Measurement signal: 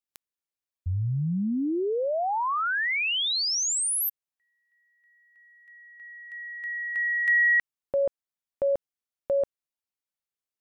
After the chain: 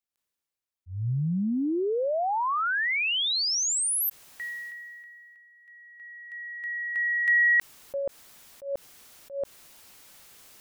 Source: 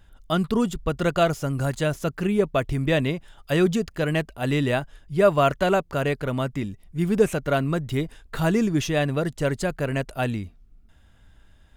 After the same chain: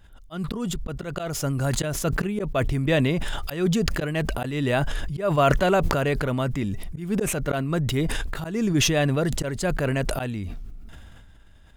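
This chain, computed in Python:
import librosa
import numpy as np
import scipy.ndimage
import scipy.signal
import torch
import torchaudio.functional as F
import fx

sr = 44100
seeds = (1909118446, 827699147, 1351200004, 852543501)

y = fx.auto_swell(x, sr, attack_ms=231.0)
y = fx.sustainer(y, sr, db_per_s=21.0)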